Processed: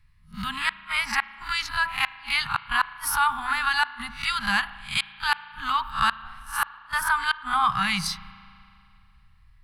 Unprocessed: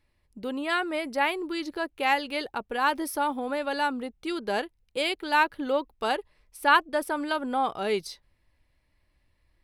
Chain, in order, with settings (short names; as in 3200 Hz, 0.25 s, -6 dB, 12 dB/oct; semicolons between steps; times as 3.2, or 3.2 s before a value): spectral swells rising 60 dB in 0.31 s; elliptic band-stop 160–1100 Hz, stop band 50 dB; gate -59 dBFS, range -8 dB; tilt shelf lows +5.5 dB, about 1400 Hz; de-hum 82.89 Hz, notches 18; in parallel at +1 dB: compressor 16:1, threshold -36 dBFS, peak gain reduction 21.5 dB; on the sum: flipped gate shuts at -17 dBFS, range -42 dB; spring tank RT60 2.6 s, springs 36 ms, chirp 25 ms, DRR 16.5 dB; gain +8 dB